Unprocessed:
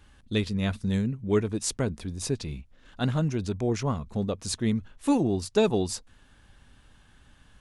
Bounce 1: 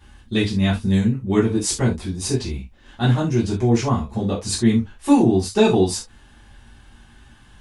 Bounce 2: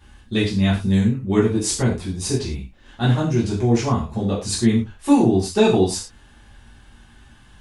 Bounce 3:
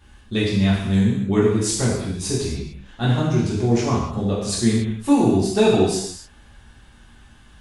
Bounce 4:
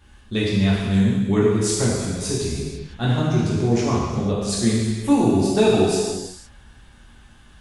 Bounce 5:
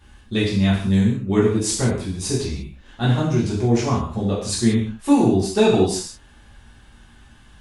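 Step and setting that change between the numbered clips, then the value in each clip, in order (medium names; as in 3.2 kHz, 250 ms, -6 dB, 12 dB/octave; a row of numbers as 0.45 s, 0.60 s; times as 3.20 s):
gated-style reverb, gate: 100 ms, 140 ms, 320 ms, 530 ms, 220 ms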